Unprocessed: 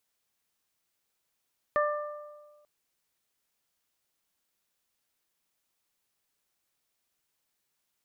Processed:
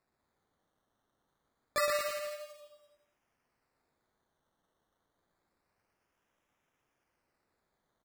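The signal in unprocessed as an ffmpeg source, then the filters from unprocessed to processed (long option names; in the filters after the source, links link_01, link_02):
-f lavfi -i "aevalsrc='0.0631*pow(10,-3*t/1.48)*sin(2*PI*594*t)+0.0562*pow(10,-3*t/1.18)*sin(2*PI*1188*t)+0.0316*pow(10,-3*t/0.75)*sin(2*PI*1782*t)':duration=0.89:sample_rate=44100"
-filter_complex "[0:a]flanger=delay=15.5:depth=5.3:speed=1.3,acrusher=samples=14:mix=1:aa=0.000001:lfo=1:lforange=8.4:lforate=0.27,asplit=2[link_01][link_02];[link_02]aecho=0:1:120|228|325.2|412.7|491.4:0.631|0.398|0.251|0.158|0.1[link_03];[link_01][link_03]amix=inputs=2:normalize=0"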